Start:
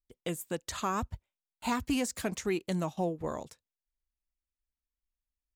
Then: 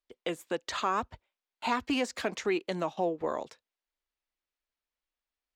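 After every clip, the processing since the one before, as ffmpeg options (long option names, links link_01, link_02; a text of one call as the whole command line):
ffmpeg -i in.wav -filter_complex "[0:a]acrossover=split=280 5100:gain=0.141 1 0.112[link_01][link_02][link_03];[link_01][link_02][link_03]amix=inputs=3:normalize=0,asplit=2[link_04][link_05];[link_05]alimiter=level_in=6dB:limit=-24dB:level=0:latency=1:release=214,volume=-6dB,volume=2dB[link_06];[link_04][link_06]amix=inputs=2:normalize=0" out.wav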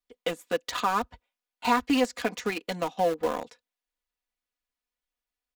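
ffmpeg -i in.wav -filter_complex "[0:a]aecho=1:1:4.1:0.76,asplit=2[link_01][link_02];[link_02]aeval=exprs='val(0)*gte(abs(val(0)),0.0422)':channel_layout=same,volume=-3.5dB[link_03];[link_01][link_03]amix=inputs=2:normalize=0,volume=-2dB" out.wav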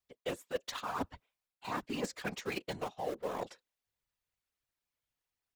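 ffmpeg -i in.wav -af "areverse,acompressor=threshold=-33dB:ratio=10,areverse,afftfilt=real='hypot(re,im)*cos(2*PI*random(0))':imag='hypot(re,im)*sin(2*PI*random(1))':win_size=512:overlap=0.75,volume=5.5dB" out.wav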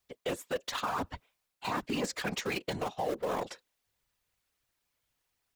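ffmpeg -i in.wav -af "alimiter=level_in=8.5dB:limit=-24dB:level=0:latency=1:release=69,volume=-8.5dB,volume=9dB" out.wav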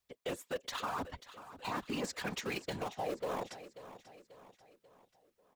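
ffmpeg -i in.wav -af "aecho=1:1:539|1078|1617|2156:0.188|0.0904|0.0434|0.0208,volume=-4.5dB" out.wav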